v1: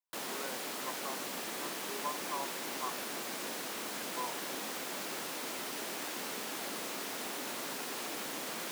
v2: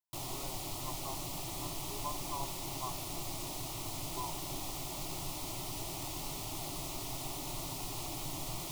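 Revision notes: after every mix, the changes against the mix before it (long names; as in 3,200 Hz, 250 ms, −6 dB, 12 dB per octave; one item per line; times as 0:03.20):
background: remove high-pass filter 230 Hz 24 dB per octave
master: add phaser with its sweep stopped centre 320 Hz, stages 8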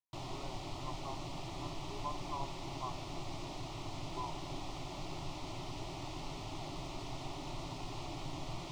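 master: add high-frequency loss of the air 150 metres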